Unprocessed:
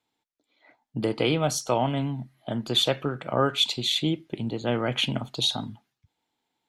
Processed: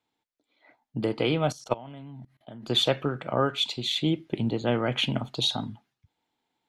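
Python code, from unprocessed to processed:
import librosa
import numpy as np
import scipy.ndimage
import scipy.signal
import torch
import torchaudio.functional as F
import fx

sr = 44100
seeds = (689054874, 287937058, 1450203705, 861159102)

y = fx.level_steps(x, sr, step_db=22, at=(1.52, 2.7))
y = fx.high_shelf(y, sr, hz=6700.0, db=-8.5)
y = fx.rider(y, sr, range_db=10, speed_s=0.5)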